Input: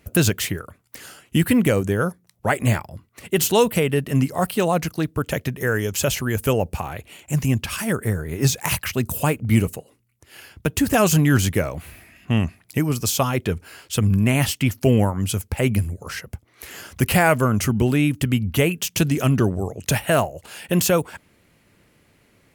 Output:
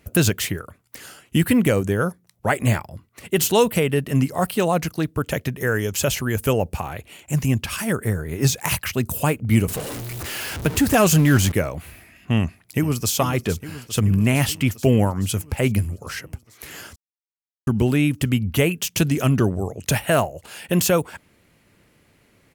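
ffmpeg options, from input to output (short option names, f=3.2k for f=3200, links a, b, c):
-filter_complex "[0:a]asettb=1/sr,asplit=3[a][b][c];[a]atrim=end=9.684[d];[b]atrim=start=9.68:end=11.52,asetpts=PTS-STARTPTS,afade=t=in:d=0.004:c=qsin,afade=t=out:st=1.836:d=0.004:c=qsin,aeval=exprs='val(0)+0.5*0.0562*sgn(val(0))':c=same[e];[c]atrim=start=11.516[f];[d][e]acrossfade=d=0.004:c1=hsin:c2=qsin[g];[g][f]acrossfade=d=0.004:c1=qsin:c2=hsin,asplit=2[h][i];[i]afade=t=in:st=12.39:d=0.01,afade=t=out:st=13.13:d=0.01,aecho=0:1:430|860|1290|1720|2150|2580|3010|3440|3870|4300|4730|5160:0.237137|0.177853|0.13339|0.100042|0.0750317|0.0562738|0.0422054|0.031654|0.0237405|0.0178054|0.013354|0.0100155[j];[h][j]amix=inputs=2:normalize=0,asplit=3[k][l][m];[k]atrim=end=16.96,asetpts=PTS-STARTPTS,afade=t=out:st=16.956:d=0.004:c=hsin[n];[l]atrim=start=16.96:end=17.67,asetpts=PTS-STARTPTS,volume=0[o];[m]atrim=start=17.67,asetpts=PTS-STARTPTS,afade=t=in:d=0.004:c=hsin[p];[n][o][p]concat=n=3:v=0:a=1"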